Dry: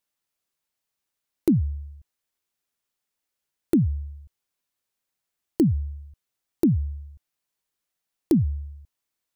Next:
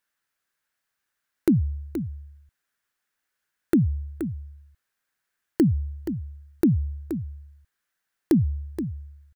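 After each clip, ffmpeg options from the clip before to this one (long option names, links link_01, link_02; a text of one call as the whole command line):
ffmpeg -i in.wav -af "equalizer=frequency=1600:width=1.9:gain=13,aecho=1:1:475:0.316" out.wav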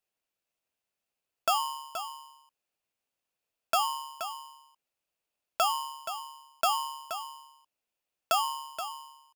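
ffmpeg -i in.wav -af "aeval=exprs='val(0)*sgn(sin(2*PI*1000*n/s))':channel_layout=same,volume=-7.5dB" out.wav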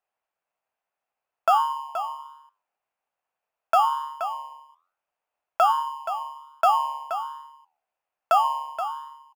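ffmpeg -i in.wav -af "firequalizer=gain_entry='entry(290,0);entry(760,15);entry(3800,-4)':delay=0.05:min_phase=1,flanger=delay=9.8:depth=5.3:regen=-85:speed=1.2:shape=sinusoidal" out.wav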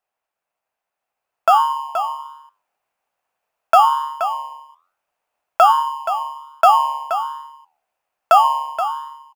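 ffmpeg -i in.wav -af "dynaudnorm=framelen=930:gausssize=3:maxgain=5.5dB,volume=3dB" out.wav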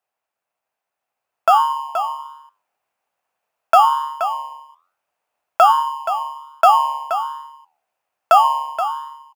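ffmpeg -i in.wav -af "highpass=59" out.wav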